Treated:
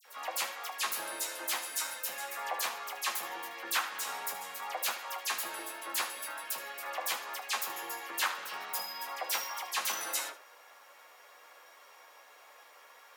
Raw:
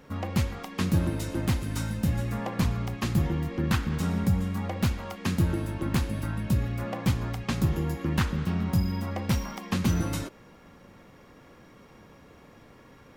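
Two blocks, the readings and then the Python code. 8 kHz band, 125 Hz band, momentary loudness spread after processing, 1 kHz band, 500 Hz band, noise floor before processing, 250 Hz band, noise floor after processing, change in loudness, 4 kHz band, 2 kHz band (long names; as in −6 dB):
+6.0 dB, below −40 dB, 6 LU, +1.0 dB, −9.0 dB, −53 dBFS, −29.0 dB, −57 dBFS, −6.0 dB, +3.0 dB, +2.0 dB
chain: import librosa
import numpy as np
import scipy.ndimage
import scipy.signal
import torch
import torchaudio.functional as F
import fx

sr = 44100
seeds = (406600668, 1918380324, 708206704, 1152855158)

p1 = scipy.signal.sosfilt(scipy.signal.butter(4, 640.0, 'highpass', fs=sr, output='sos'), x)
p2 = fx.high_shelf(p1, sr, hz=7700.0, db=10.0)
p3 = fx.dispersion(p2, sr, late='lows', ms=56.0, hz=2500.0)
y = p3 + fx.room_early_taps(p3, sr, ms=(12, 77), db=(-6.0, -13.0), dry=0)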